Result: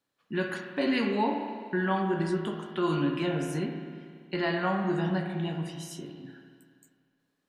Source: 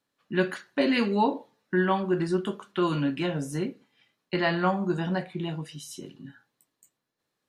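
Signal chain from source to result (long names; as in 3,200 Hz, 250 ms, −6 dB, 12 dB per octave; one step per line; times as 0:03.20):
in parallel at +0.5 dB: brickwall limiter −20 dBFS, peak gain reduction 9.5 dB
on the sum: spring reverb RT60 2 s, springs 31/48 ms, chirp 45 ms, DRR 3.5 dB
level −8.5 dB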